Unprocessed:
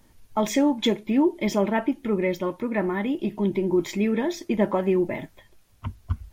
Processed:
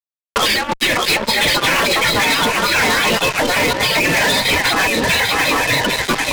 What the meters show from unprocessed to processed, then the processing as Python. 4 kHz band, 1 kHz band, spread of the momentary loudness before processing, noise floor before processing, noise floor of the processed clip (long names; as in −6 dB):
+22.5 dB, +14.5 dB, 11 LU, −57 dBFS, below −85 dBFS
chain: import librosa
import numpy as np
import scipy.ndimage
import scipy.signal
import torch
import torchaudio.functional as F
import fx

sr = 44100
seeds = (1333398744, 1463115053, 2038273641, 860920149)

p1 = fx.freq_compress(x, sr, knee_hz=3500.0, ratio=4.0)
p2 = fx.noise_reduce_blind(p1, sr, reduce_db=27)
p3 = fx.low_shelf(p2, sr, hz=150.0, db=-7.5)
p4 = p3 + fx.echo_swing(p3, sr, ms=797, ratio=3, feedback_pct=47, wet_db=-13.5, dry=0)
p5 = fx.over_compress(p4, sr, threshold_db=-26.0, ratio=-0.5)
p6 = fx.spec_gate(p5, sr, threshold_db=-20, keep='weak')
p7 = fx.fuzz(p6, sr, gain_db=54.0, gate_db=-57.0)
y = fx.band_squash(p7, sr, depth_pct=70)